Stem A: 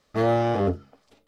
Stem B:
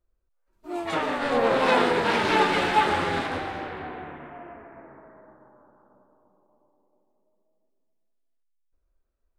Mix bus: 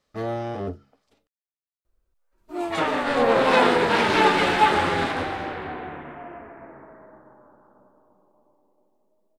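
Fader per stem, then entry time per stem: -7.0, +3.0 dB; 0.00, 1.85 s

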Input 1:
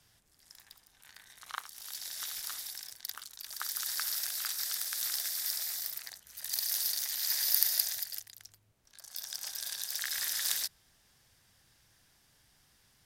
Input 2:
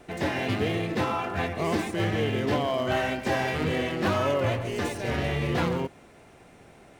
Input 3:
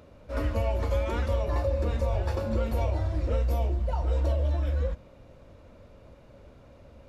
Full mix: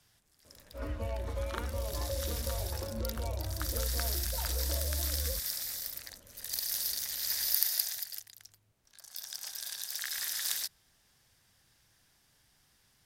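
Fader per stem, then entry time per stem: -1.5 dB, off, -9.0 dB; 0.00 s, off, 0.45 s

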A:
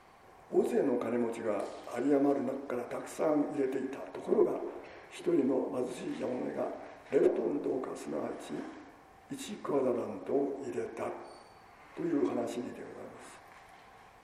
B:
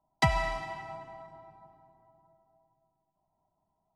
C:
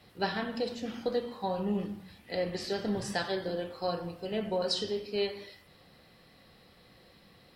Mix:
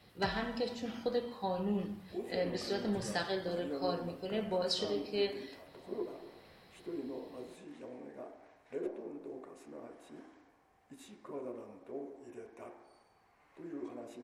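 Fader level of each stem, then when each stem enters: -12.5, -17.0, -3.0 dB; 1.60, 0.00, 0.00 s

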